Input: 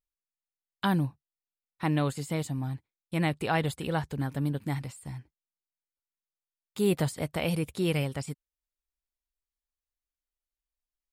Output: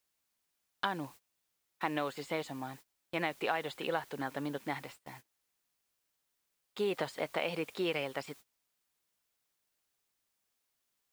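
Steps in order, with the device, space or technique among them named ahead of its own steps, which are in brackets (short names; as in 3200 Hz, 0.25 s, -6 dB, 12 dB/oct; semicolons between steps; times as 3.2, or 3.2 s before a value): baby monitor (BPF 450–3600 Hz; compressor 6:1, threshold -32 dBFS, peak gain reduction 9.5 dB; white noise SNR 20 dB; gate -54 dBFS, range -22 dB); gain +3 dB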